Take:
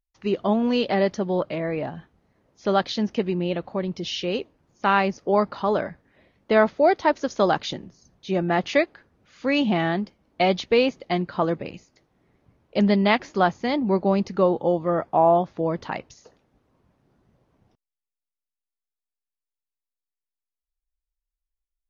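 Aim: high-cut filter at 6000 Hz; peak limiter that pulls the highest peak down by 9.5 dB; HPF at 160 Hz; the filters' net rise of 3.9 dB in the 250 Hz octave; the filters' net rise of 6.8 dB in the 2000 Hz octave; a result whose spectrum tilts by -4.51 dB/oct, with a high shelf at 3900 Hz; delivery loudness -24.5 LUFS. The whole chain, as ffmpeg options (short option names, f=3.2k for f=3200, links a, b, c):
-af "highpass=160,lowpass=6k,equalizer=f=250:t=o:g=6.5,equalizer=f=2k:t=o:g=9,highshelf=f=3.9k:g=-3.5,volume=-2dB,alimiter=limit=-11.5dB:level=0:latency=1"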